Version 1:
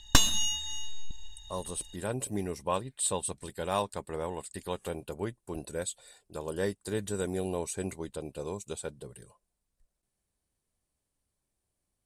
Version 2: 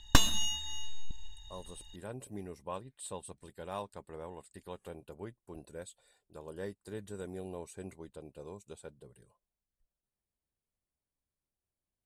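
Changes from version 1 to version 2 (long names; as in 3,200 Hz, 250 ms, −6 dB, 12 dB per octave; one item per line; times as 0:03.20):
speech −9.5 dB
master: add parametric band 7,300 Hz −6 dB 2.3 octaves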